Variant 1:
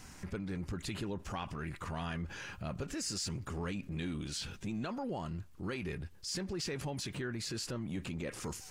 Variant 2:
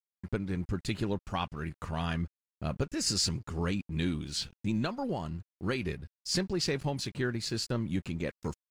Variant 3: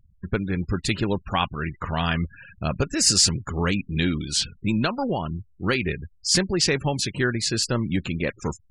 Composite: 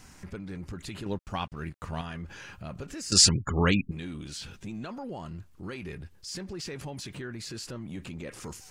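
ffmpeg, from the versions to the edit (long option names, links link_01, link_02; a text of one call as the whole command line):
ffmpeg -i take0.wav -i take1.wav -i take2.wav -filter_complex "[0:a]asplit=3[link_01][link_02][link_03];[link_01]atrim=end=1.062[link_04];[1:a]atrim=start=1.058:end=2.012[link_05];[link_02]atrim=start=2.008:end=3.122[link_06];[2:a]atrim=start=3.118:end=3.912[link_07];[link_03]atrim=start=3.908[link_08];[link_04][link_05]acrossfade=duration=0.004:curve1=hsin:curve2=hsin[link_09];[link_09][link_06]acrossfade=duration=0.004:curve1=hsin:curve2=hsin[link_10];[link_10][link_07]acrossfade=duration=0.004:curve1=hsin:curve2=hsin[link_11];[link_11][link_08]acrossfade=duration=0.004:curve1=hsin:curve2=hsin" out.wav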